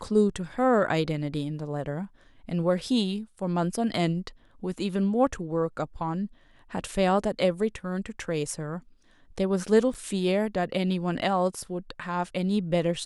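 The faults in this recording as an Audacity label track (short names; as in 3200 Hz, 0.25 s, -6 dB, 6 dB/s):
9.940000	9.950000	gap 6 ms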